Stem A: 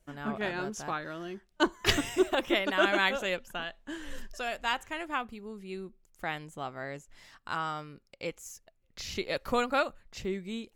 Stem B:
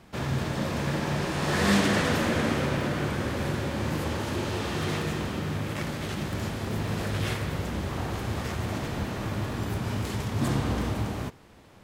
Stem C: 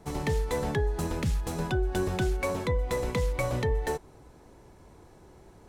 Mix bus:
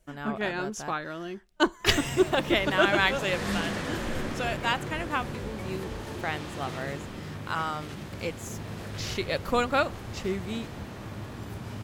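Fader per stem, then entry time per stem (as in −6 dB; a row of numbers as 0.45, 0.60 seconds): +3.0, −8.0, −14.0 decibels; 0.00, 1.80, 2.20 seconds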